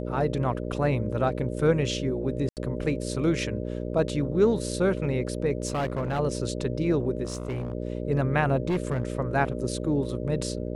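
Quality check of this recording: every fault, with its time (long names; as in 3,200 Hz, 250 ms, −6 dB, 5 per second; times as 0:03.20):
mains buzz 60 Hz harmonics 10 −32 dBFS
0:02.49–0:02.57: drop-out 78 ms
0:05.67–0:06.20: clipping −23.5 dBFS
0:07.24–0:07.73: clipping −26.5 dBFS
0:08.68–0:09.10: clipping −21 dBFS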